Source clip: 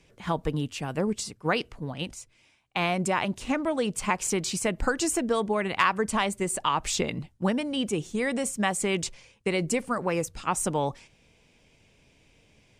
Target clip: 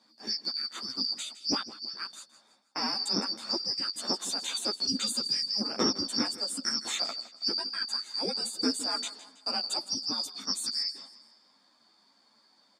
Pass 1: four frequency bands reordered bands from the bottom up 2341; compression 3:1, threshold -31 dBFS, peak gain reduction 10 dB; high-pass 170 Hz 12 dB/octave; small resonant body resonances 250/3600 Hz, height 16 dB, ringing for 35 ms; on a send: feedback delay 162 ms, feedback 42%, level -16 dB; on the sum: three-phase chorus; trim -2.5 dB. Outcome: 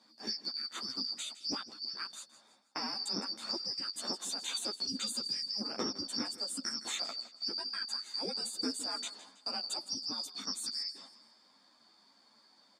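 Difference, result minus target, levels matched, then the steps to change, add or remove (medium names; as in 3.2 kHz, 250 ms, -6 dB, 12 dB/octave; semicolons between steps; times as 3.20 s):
compression: peak gain reduction +10 dB
remove: compression 3:1, threshold -31 dBFS, peak gain reduction 10 dB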